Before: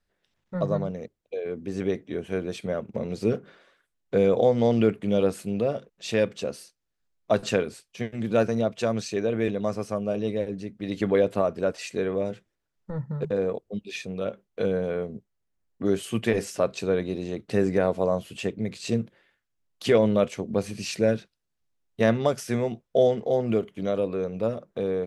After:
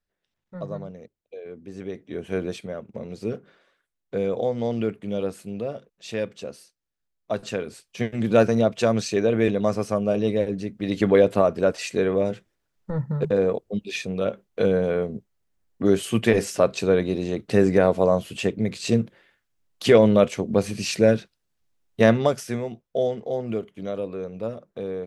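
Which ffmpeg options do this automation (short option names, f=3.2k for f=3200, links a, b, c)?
-af "volume=12.5dB,afade=t=in:st=1.92:d=0.53:silence=0.316228,afade=t=out:st=2.45:d=0.23:silence=0.421697,afade=t=in:st=7.59:d=0.44:silence=0.334965,afade=t=out:st=22.05:d=0.58:silence=0.375837"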